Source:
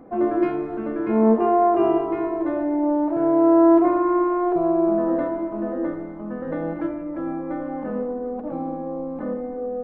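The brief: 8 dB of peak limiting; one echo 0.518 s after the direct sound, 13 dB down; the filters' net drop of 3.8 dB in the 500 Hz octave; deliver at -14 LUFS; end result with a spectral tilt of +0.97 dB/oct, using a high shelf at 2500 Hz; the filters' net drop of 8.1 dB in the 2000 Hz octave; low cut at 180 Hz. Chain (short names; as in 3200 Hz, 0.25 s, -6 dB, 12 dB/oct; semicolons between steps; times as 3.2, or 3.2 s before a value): HPF 180 Hz; bell 500 Hz -5 dB; bell 2000 Hz -8 dB; high shelf 2500 Hz -8 dB; limiter -17 dBFS; echo 0.518 s -13 dB; gain +13 dB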